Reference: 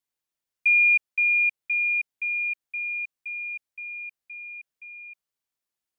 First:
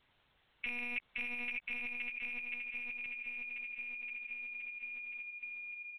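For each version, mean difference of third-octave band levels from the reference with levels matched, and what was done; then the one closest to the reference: 10.5 dB: peak limiter -18.5 dBFS, peak gain reduction 3.5 dB; on a send: feedback delay 604 ms, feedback 32%, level -5 dB; on the sum: LPC vocoder at 8 kHz pitch kept; spectrum-flattening compressor 10:1; trim -7.5 dB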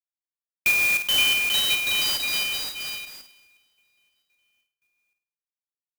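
14.5 dB: gate -30 dBFS, range -30 dB; ever faster or slower copies 562 ms, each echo +4 st, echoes 3; on a send: flutter echo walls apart 8.9 m, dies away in 0.44 s; on the sum: sampling jitter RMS 0.026 ms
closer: first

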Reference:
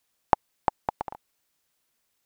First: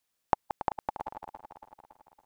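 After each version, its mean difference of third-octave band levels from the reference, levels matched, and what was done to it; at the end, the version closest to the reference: 1.5 dB: backward echo that repeats 140 ms, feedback 74%, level -10 dB; trim -5.5 dB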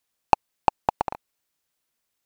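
3.0 dB: waveshaping leveller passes 2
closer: first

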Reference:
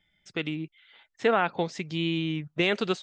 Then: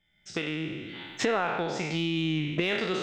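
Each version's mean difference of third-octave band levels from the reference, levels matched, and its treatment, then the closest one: 8.5 dB: spectral sustain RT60 0.98 s; recorder AGC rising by 26 dB/s; in parallel at -9 dB: saturation -22 dBFS, distortion -9 dB; on the sum: trim -7.5 dB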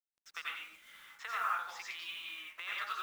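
15.5 dB: compression 12:1, threshold -31 dBFS, peak gain reduction 13.5 dB; ladder high-pass 1.1 kHz, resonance 65%; companded quantiser 6-bit; plate-style reverb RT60 0.53 s, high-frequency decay 0.65×, pre-delay 75 ms, DRR -5 dB; trim +3.5 dB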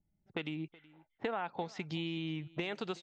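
4.5 dB: compression 8:1, threshold -33 dBFS, peak gain reduction 14.5 dB; level-controlled noise filter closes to 310 Hz, open at -34.5 dBFS; peaking EQ 850 Hz +6.5 dB 0.53 oct; on a send: delay 373 ms -22.5 dB; on the sum: trim -1.5 dB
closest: third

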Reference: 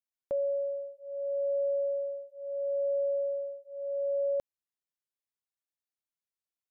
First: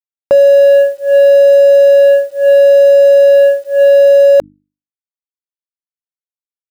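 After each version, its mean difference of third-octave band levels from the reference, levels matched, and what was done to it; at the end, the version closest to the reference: 4.5 dB: companding laws mixed up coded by A; high-pass 140 Hz 6 dB/octave; hum notches 50/100/150/200/250/300 Hz; loudness maximiser +35 dB; trim -1 dB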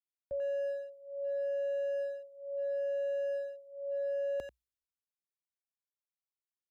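2.0 dB: speakerphone echo 90 ms, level -7 dB; peak limiter -31 dBFS, peak gain reduction 5.5 dB; peaking EQ 61 Hz +9.5 dB 0.34 oct; three bands expanded up and down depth 70%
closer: second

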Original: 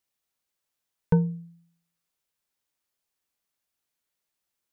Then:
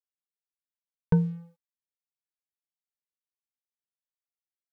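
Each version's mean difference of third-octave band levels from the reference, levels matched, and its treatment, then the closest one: 1.5 dB: crossover distortion -53.5 dBFS; dynamic bell 670 Hz, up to -6 dB, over -40 dBFS, Q 0.89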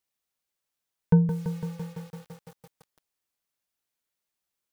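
6.5 dB: dynamic bell 190 Hz, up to +5 dB, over -31 dBFS, Q 1; bit-crushed delay 168 ms, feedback 80%, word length 7-bit, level -8.5 dB; trim -2 dB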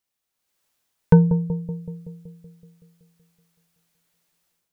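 3.0 dB: level rider gain up to 12 dB; bucket-brigade echo 188 ms, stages 1024, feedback 63%, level -11 dB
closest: first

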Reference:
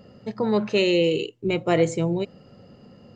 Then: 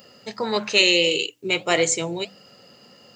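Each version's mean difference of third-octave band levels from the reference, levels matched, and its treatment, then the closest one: 6.5 dB: de-hum 98.2 Hz, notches 3; flange 1.6 Hz, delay 1 ms, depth 5.6 ms, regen -78%; tilt EQ +4.5 dB/octave; trim +7.5 dB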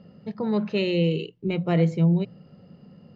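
4.0 dB: low-pass 5 kHz 24 dB/octave; peaking EQ 170 Hz +13.5 dB 0.49 oct; hum notches 60/120/180 Hz; trim -5.5 dB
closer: second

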